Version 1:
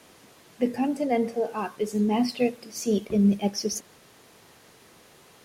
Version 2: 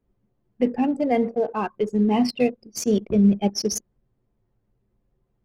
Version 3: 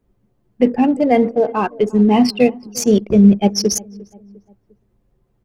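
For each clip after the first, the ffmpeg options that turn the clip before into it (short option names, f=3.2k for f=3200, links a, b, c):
-filter_complex "[0:a]anlmdn=6.31,lowshelf=f=90:g=6.5,asplit=2[a][b];[b]acompressor=threshold=-29dB:ratio=6,volume=-3dB[c];[a][c]amix=inputs=2:normalize=0,volume=1dB"
-filter_complex "[0:a]asplit=2[a][b];[b]adelay=351,lowpass=f=1.3k:p=1,volume=-22dB,asplit=2[c][d];[d]adelay=351,lowpass=f=1.3k:p=1,volume=0.49,asplit=2[e][f];[f]adelay=351,lowpass=f=1.3k:p=1,volume=0.49[g];[a][c][e][g]amix=inputs=4:normalize=0,volume=7.5dB"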